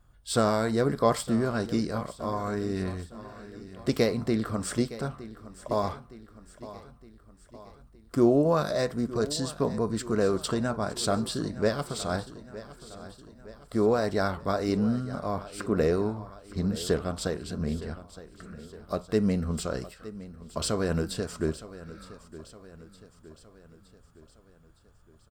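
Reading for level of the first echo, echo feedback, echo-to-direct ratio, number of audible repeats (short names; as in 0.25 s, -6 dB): -16.0 dB, 53%, -14.5 dB, 4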